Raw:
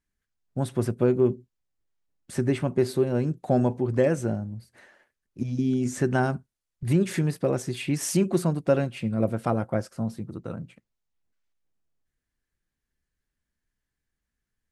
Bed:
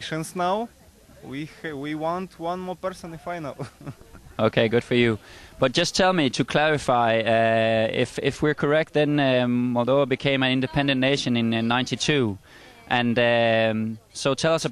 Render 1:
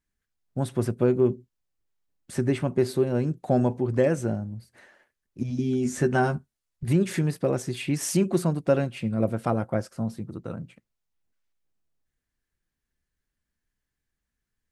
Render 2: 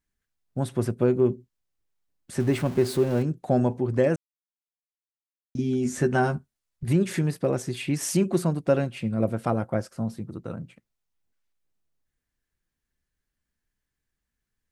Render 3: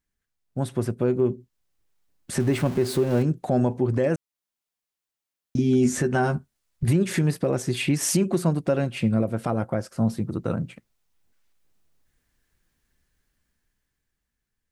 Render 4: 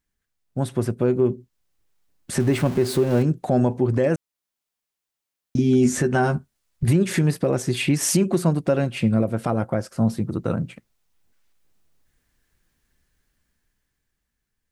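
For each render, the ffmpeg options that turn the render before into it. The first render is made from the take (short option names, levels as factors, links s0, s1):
-filter_complex "[0:a]asettb=1/sr,asplit=3[s0][s1][s2];[s0]atrim=end=5.494[s3];[s1]atrim=start=5.49:end=6.88,asetpts=PTS-STARTPTS,afade=t=in:d=0.004:c=qsin,afade=t=out:st=1.386:d=0.004:c=qsin,asplit=2[s4][s5];[s5]adelay=13,volume=0.501[s6];[s4][s6]amix=inputs=2:normalize=0,atrim=end_sample=61299[s7];[s2]atrim=start=6.876[s8];[s3][s7]acrossfade=d=0.004:c1=hsin:c2=qsin[s9];[s9][s8]acrossfade=d=0.004:c1=qsin:c2=hsin"
-filter_complex "[0:a]asettb=1/sr,asplit=3[s0][s1][s2];[s0]atrim=end=2.404[s3];[s1]atrim=start=2.4:end=3.23,asetpts=PTS-STARTPTS,afade=t=in:d=0.004:c=qsin,afade=t=out:st=0.826:d=0.004:c=qsin,aeval=exprs='val(0)+0.5*0.0188*sgn(val(0))':c=same[s4];[s2]atrim=start=3.226[s5];[s3][s4]acrossfade=d=0.004:c1=hsin:c2=qsin[s6];[s6][s5]acrossfade=d=0.004:c1=qsin:c2=hsin,asplit=3[s7][s8][s9];[s7]atrim=end=4.16,asetpts=PTS-STARTPTS,afade=t=out:st=4.156:d=0.004:c=hsin[s10];[s8]atrim=start=4.16:end=5.55,asetpts=PTS-STARTPTS,volume=0[s11];[s9]atrim=start=5.55,asetpts=PTS-STARTPTS,afade=t=in:d=0.004:c=hsin[s12];[s10][s11][s12]concat=n=3:v=0:a=1"
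-af "dynaudnorm=f=320:g=9:m=3.76,alimiter=limit=0.237:level=0:latency=1:release=378"
-af "volume=1.33"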